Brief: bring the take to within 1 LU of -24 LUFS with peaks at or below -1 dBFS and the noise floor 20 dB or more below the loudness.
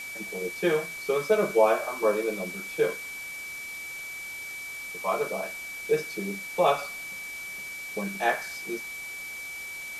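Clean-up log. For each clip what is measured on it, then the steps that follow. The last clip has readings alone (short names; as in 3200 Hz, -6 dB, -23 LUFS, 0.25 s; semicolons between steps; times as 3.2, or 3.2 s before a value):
steady tone 2300 Hz; tone level -36 dBFS; noise floor -38 dBFS; noise floor target -50 dBFS; loudness -29.5 LUFS; peak -8.0 dBFS; loudness target -24.0 LUFS
-> notch 2300 Hz, Q 30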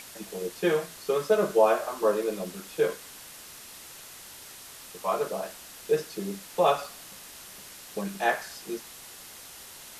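steady tone none; noise floor -46 dBFS; noise floor target -49 dBFS
-> denoiser 6 dB, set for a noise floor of -46 dBFS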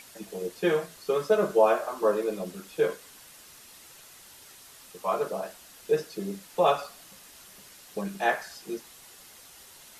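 noise floor -51 dBFS; loudness -28.5 LUFS; peak -8.5 dBFS; loudness target -24.0 LUFS
-> gain +4.5 dB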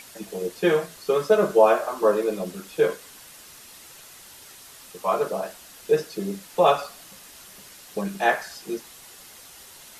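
loudness -24.0 LUFS; peak -4.0 dBFS; noise floor -47 dBFS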